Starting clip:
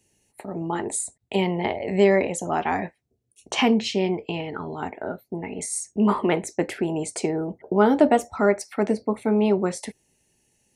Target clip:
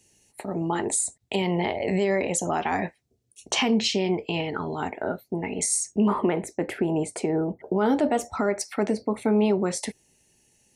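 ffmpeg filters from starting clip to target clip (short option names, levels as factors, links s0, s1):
-af "asetnsamples=n=441:p=0,asendcmd='6.08 equalizer g -9;7.59 equalizer g 3',equalizer=f=5600:w=0.67:g=5.5,alimiter=limit=0.158:level=0:latency=1:release=91,volume=1.26"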